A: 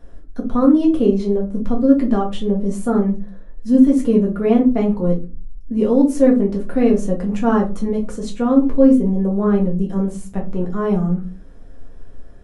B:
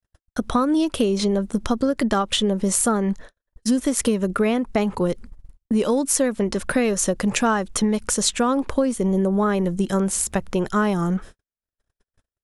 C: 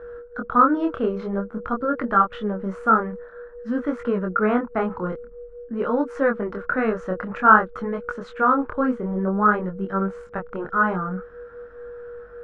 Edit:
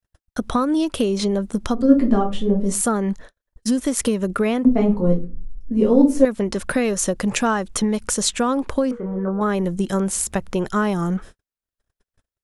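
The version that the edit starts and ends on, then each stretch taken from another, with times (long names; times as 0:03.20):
B
0:01.82–0:02.72: punch in from A, crossfade 0.24 s
0:04.65–0:06.25: punch in from A
0:08.91–0:09.41: punch in from C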